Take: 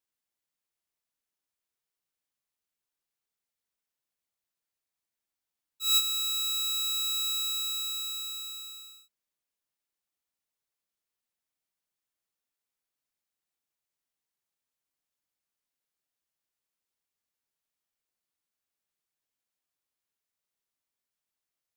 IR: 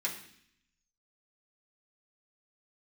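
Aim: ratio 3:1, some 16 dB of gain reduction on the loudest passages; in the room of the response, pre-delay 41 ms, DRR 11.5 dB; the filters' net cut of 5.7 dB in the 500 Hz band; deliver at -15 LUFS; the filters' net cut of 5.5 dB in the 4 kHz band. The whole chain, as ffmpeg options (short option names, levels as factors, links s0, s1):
-filter_complex "[0:a]equalizer=f=500:t=o:g=-7.5,equalizer=f=4000:t=o:g=-5.5,acompressor=threshold=0.00562:ratio=3,asplit=2[s0][s1];[1:a]atrim=start_sample=2205,adelay=41[s2];[s1][s2]afir=irnorm=-1:irlink=0,volume=0.168[s3];[s0][s3]amix=inputs=2:normalize=0,volume=21.1"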